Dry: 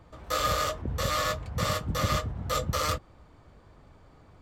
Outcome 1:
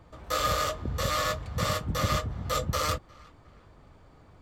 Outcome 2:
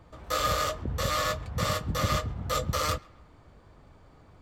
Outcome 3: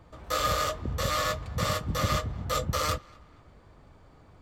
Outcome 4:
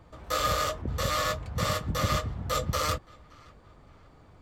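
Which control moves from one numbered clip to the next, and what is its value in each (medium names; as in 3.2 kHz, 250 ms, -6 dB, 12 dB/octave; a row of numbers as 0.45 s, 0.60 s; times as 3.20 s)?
band-passed feedback delay, time: 359 ms, 135 ms, 238 ms, 572 ms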